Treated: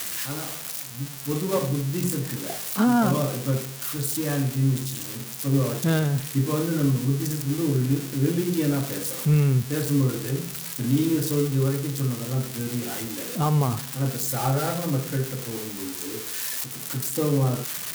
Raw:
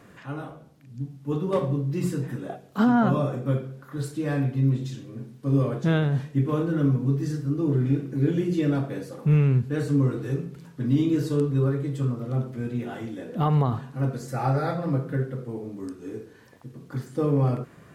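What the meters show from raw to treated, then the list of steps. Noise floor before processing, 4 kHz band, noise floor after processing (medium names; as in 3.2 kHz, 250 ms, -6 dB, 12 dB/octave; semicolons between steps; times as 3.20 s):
-51 dBFS, +11.5 dB, -36 dBFS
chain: zero-crossing glitches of -18.5 dBFS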